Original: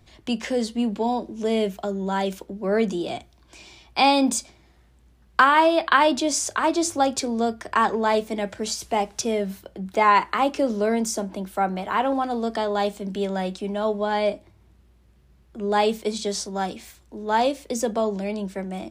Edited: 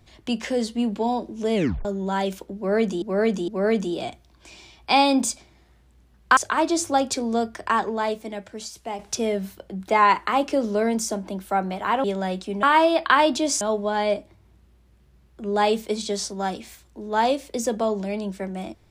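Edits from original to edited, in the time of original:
0:01.55: tape stop 0.30 s
0:02.56–0:03.02: repeat, 3 plays
0:05.45–0:06.43: move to 0:13.77
0:07.58–0:09.05: fade out quadratic, to −8.5 dB
0:12.10–0:13.18: remove

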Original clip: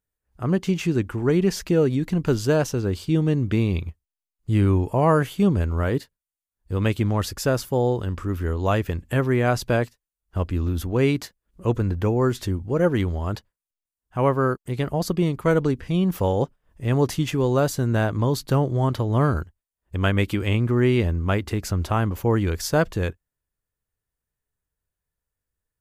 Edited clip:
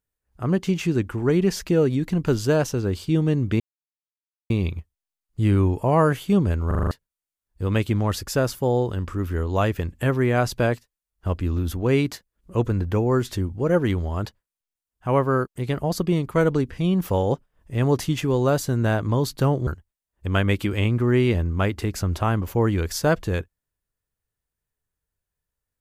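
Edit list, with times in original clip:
0:03.60: splice in silence 0.90 s
0:05.77: stutter in place 0.04 s, 6 plays
0:18.77–0:19.36: remove

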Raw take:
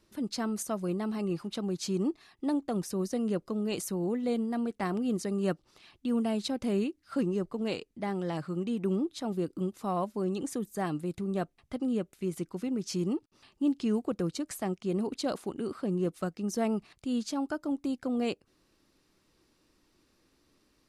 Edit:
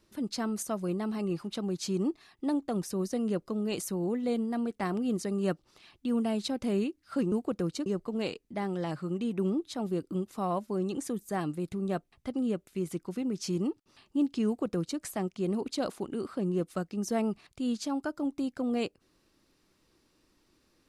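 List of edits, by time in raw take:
0:13.92–0:14.46: duplicate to 0:07.32

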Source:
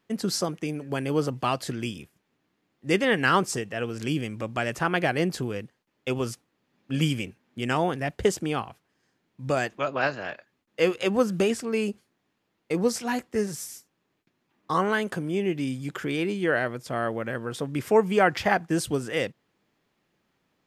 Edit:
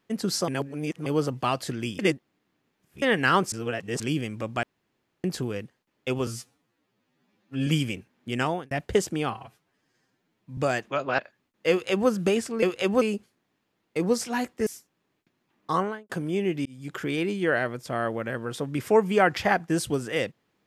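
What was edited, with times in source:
0:00.48–0:01.06: reverse
0:01.99–0:03.02: reverse
0:03.52–0:04.00: reverse
0:04.63–0:05.24: fill with room tone
0:06.27–0:06.97: time-stretch 2×
0:07.72–0:08.01: fade out
0:08.60–0:09.45: time-stretch 1.5×
0:10.06–0:10.32: remove
0:10.84–0:11.23: duplicate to 0:11.76
0:13.41–0:13.67: remove
0:14.72–0:15.10: fade out and dull
0:15.66–0:15.99: fade in

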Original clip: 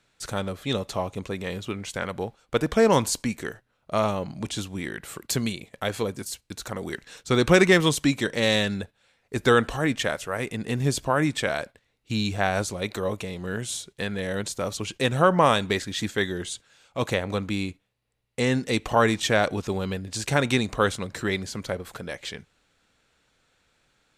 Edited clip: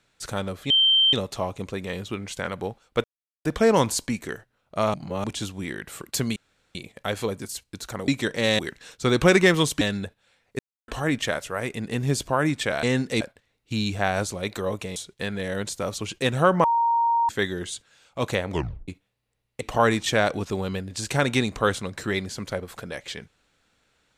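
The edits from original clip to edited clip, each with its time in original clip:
0:00.70: insert tone 3,130 Hz −15 dBFS 0.43 s
0:02.61: splice in silence 0.41 s
0:04.10–0:04.40: reverse
0:05.52: splice in room tone 0.39 s
0:08.07–0:08.58: move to 0:06.85
0:09.36–0:09.65: silence
0:13.35–0:13.75: remove
0:15.43–0:16.08: beep over 931 Hz −18 dBFS
0:17.29: tape stop 0.38 s
0:18.40–0:18.78: move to 0:11.60

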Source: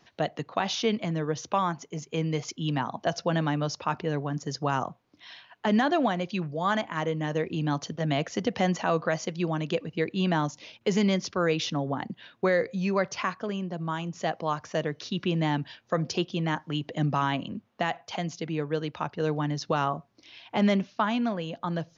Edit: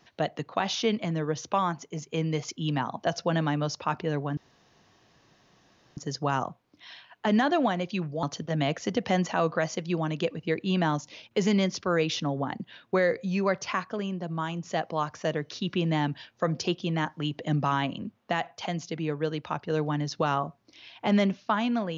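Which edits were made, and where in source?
0:04.37: splice in room tone 1.60 s
0:06.63–0:07.73: remove

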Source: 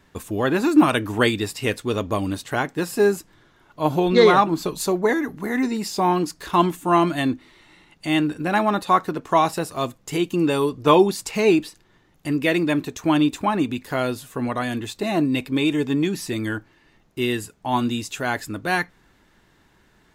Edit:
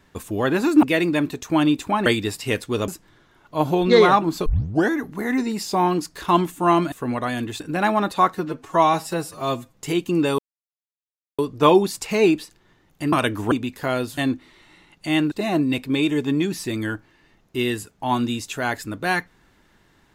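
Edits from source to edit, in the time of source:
0:00.83–0:01.22: swap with 0:12.37–0:13.60
0:02.04–0:03.13: remove
0:04.71: tape start 0.44 s
0:07.17–0:08.31: swap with 0:14.26–0:14.94
0:09.06–0:09.99: time-stretch 1.5×
0:10.63: splice in silence 1.00 s

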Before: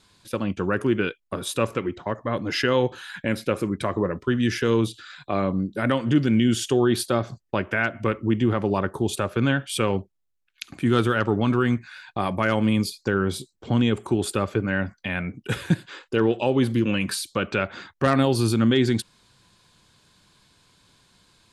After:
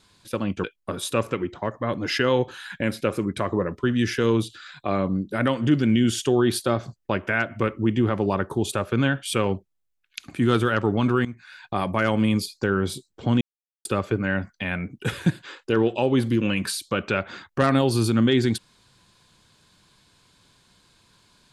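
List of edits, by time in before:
0:00.64–0:01.08: remove
0:11.69–0:12.09: fade in, from −16 dB
0:13.85–0:14.29: silence

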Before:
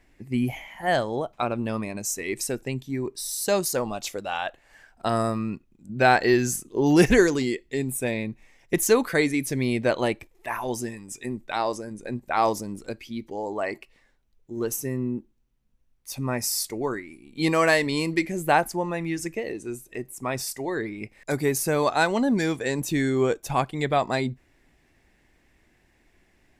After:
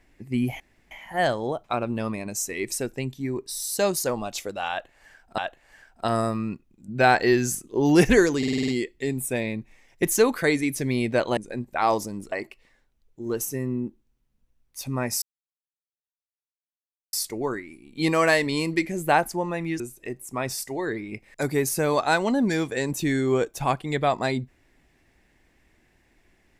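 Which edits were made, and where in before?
0:00.60: splice in room tone 0.31 s
0:04.39–0:05.07: repeat, 2 plays
0:07.39: stutter 0.05 s, 7 plays
0:10.08–0:11.92: remove
0:12.87–0:13.63: remove
0:16.53: splice in silence 1.91 s
0:19.20–0:19.69: remove

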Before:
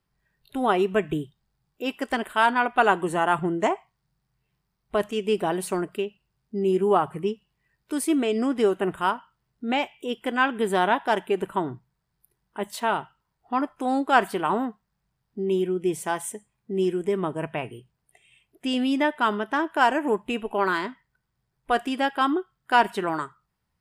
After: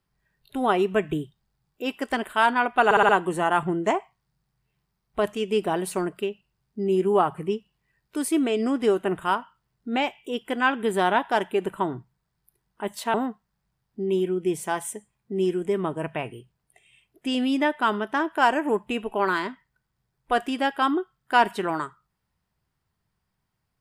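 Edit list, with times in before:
0:02.85: stutter 0.06 s, 5 plays
0:12.90–0:14.53: remove

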